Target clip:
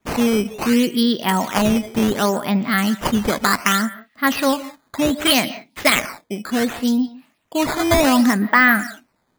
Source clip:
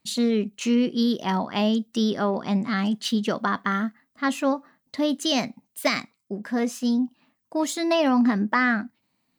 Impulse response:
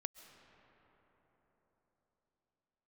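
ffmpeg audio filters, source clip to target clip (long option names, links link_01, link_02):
-filter_complex "[0:a]adynamicequalizer=threshold=0.01:dfrequency=2400:dqfactor=0.76:tfrequency=2400:tqfactor=0.76:attack=5:release=100:ratio=0.375:range=3.5:mode=boostabove:tftype=bell[link_01];[1:a]atrim=start_sample=2205,afade=type=out:start_time=0.24:duration=0.01,atrim=end_sample=11025[link_02];[link_01][link_02]afir=irnorm=-1:irlink=0,acrusher=samples=9:mix=1:aa=0.000001:lfo=1:lforange=14.4:lforate=0.67,volume=8dB"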